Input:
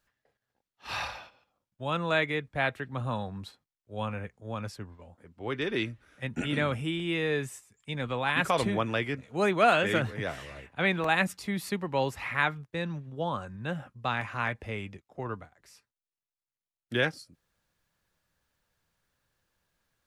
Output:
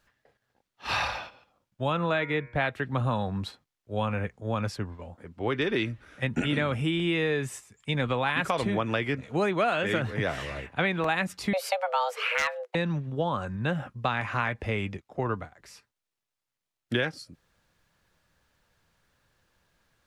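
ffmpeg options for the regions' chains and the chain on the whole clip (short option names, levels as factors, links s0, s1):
-filter_complex "[0:a]asettb=1/sr,asplit=3[s0][s1][s2];[s0]atrim=end=1.924[s3];[s1]atrim=start=1.92:end=2.61,asetpts=PTS-STARTPTS,afade=t=in:d=0.004:c=qsin,afade=t=out:st=0.686:d=0.004:c=qsin,highshelf=f=5600:g=-11,bandreject=f=118.7:t=h:w=4,bandreject=f=237.4:t=h:w=4,bandreject=f=356.1:t=h:w=4,bandreject=f=474.8:t=h:w=4,bandreject=f=593.5:t=h:w=4,bandreject=f=712.2:t=h:w=4,bandreject=f=830.9:t=h:w=4,bandreject=f=949.6:t=h:w=4,bandreject=f=1068.3:t=h:w=4,bandreject=f=1187:t=h:w=4,bandreject=f=1305.7:t=h:w=4,bandreject=f=1424.4:t=h:w=4,bandreject=f=1543.1:t=h:w=4,bandreject=f=1661.8:t=h:w=4,bandreject=f=1780.5:t=h:w=4,bandreject=f=1899.2:t=h:w=4,bandreject=f=2017.9:t=h:w=4,bandreject=f=2136.6:t=h:w=4,bandreject=f=2255.3:t=h:w=4,bandreject=f=2374:t=h:w=4,bandreject=f=2492.7:t=h:w=4[s4];[s2]atrim=start=2.606[s5];[s3][s4]acrossfade=d=0.004:c1=hsin:c2=qsin[s6];[s6][s5]acrossfade=d=0.004:c1=qsin:c2=hsin,asettb=1/sr,asplit=3[s7][s8][s9];[s7]atrim=end=11.534[s10];[s8]atrim=start=11.53:end=12.75,asetpts=PTS-STARTPTS,afade=t=in:d=0.004:c=qsin,afade=t=out:st=1.216:d=0.004:c=qsin,afreqshift=370,aeval=exprs='0.141*(abs(mod(val(0)/0.141+3,4)-2)-1)':c=same[s11];[s9]atrim=start=12.746[s12];[s10][s11]acrossfade=d=0.004:c1=hsin:c2=qsin[s13];[s13][s12]acrossfade=d=0.004:c1=qsin:c2=hsin,highshelf=f=8100:g=-8,acompressor=threshold=0.0251:ratio=6,volume=2.66"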